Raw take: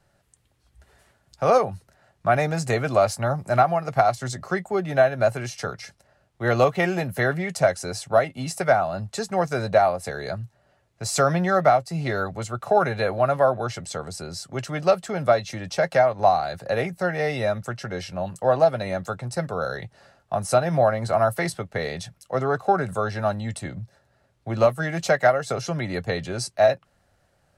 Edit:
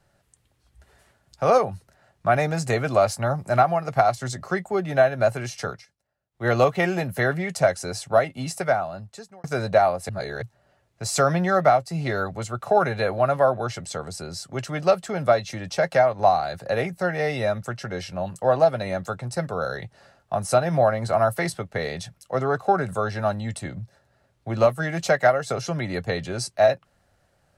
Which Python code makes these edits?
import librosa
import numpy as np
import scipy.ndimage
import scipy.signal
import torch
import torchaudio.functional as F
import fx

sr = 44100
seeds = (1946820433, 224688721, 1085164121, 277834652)

y = fx.edit(x, sr, fx.fade_down_up(start_s=5.71, length_s=0.75, db=-20.0, fade_s=0.15),
    fx.fade_out_span(start_s=8.44, length_s=1.0),
    fx.reverse_span(start_s=10.09, length_s=0.33), tone=tone)